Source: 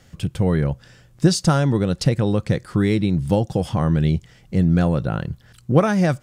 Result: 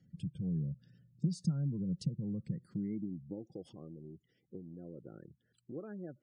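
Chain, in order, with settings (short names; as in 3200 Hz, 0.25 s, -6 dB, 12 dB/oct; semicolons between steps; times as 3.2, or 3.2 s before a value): spectral gate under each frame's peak -20 dB strong; passive tone stack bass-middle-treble 10-0-1; compressor, threshold -36 dBFS, peak gain reduction 11 dB; high-pass sweep 170 Hz -> 360 Hz, 2.49–3.55; gain +1 dB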